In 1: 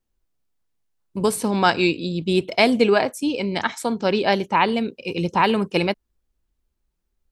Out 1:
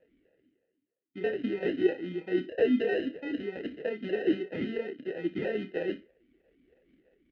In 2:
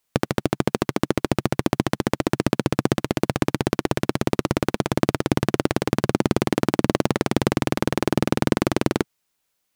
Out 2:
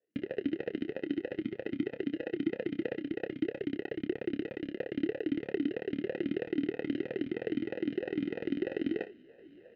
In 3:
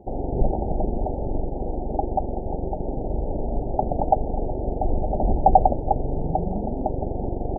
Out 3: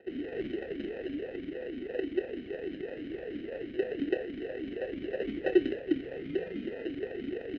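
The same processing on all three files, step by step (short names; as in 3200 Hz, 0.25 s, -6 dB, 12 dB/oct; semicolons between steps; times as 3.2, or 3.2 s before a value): notch 560 Hz, Q 12; reverse; upward compressor, threshold -21 dBFS; reverse; tube stage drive 12 dB, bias 0.4; sample-and-hold 39×; air absorption 250 m; doubler 28 ms -9.5 dB; on a send: flutter echo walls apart 10.3 m, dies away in 0.25 s; on the sum: vowel sweep e-i 3.1 Hz; gain +3 dB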